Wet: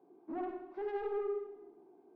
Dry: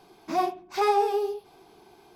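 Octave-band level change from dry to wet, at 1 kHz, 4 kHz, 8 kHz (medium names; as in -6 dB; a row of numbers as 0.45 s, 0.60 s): -19.0 dB, under -25 dB, under -30 dB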